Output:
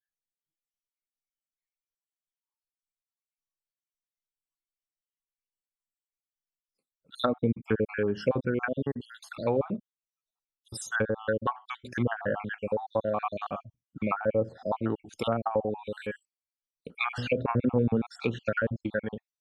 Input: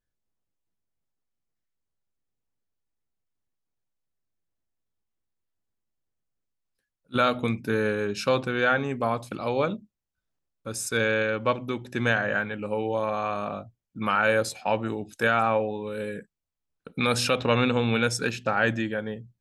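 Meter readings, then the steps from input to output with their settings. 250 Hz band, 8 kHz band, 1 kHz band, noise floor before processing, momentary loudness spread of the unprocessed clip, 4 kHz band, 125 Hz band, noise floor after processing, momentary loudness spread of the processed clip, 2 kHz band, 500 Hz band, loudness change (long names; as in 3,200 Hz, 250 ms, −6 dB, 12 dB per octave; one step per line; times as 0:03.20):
−2.0 dB, −11.5 dB, −6.5 dB, −85 dBFS, 10 LU, −11.0 dB, −2.0 dB, below −85 dBFS, 12 LU, −8.5 dB, −3.0 dB, −4.5 dB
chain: time-frequency cells dropped at random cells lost 56%
treble cut that deepens with the level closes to 560 Hz, closed at −22 dBFS
noise reduction from a noise print of the clip's start 22 dB
level +1.5 dB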